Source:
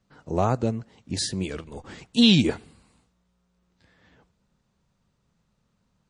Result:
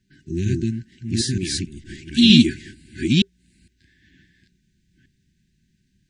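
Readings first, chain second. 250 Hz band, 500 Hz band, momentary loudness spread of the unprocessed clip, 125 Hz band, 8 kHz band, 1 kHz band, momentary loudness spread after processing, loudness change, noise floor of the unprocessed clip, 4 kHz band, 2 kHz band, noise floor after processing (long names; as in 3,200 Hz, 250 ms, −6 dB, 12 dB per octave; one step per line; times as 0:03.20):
+6.0 dB, −3.0 dB, 21 LU, +5.5 dB, +5.5 dB, below −40 dB, 19 LU, +4.0 dB, −72 dBFS, +5.5 dB, +5.5 dB, −67 dBFS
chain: delay that plays each chunk backwards 460 ms, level −1 dB
brick-wall band-stop 390–1,500 Hz
level +3 dB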